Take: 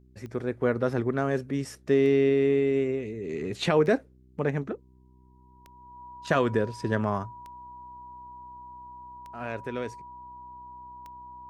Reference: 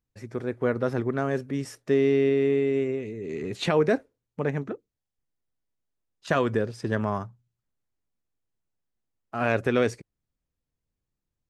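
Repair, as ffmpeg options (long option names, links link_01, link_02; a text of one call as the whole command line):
ffmpeg -i in.wav -af "adeclick=threshold=4,bandreject=frequency=63.4:width_type=h:width=4,bandreject=frequency=126.8:width_type=h:width=4,bandreject=frequency=190.2:width_type=h:width=4,bandreject=frequency=253.6:width_type=h:width=4,bandreject=frequency=317:width_type=h:width=4,bandreject=frequency=380.4:width_type=h:width=4,bandreject=frequency=970:width=30,asetnsamples=nb_out_samples=441:pad=0,asendcmd='9.18 volume volume 10.5dB',volume=0dB" out.wav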